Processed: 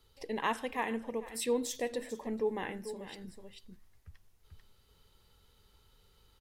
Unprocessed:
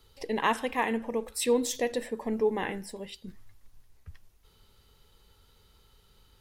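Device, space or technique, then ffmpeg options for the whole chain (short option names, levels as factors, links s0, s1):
ducked delay: -filter_complex "[0:a]asplit=3[s0][s1][s2];[s1]adelay=441,volume=0.75[s3];[s2]apad=whole_len=301831[s4];[s3][s4]sidechaincompress=threshold=0.00316:ratio=6:attack=35:release=134[s5];[s0][s5]amix=inputs=2:normalize=0,volume=0.501"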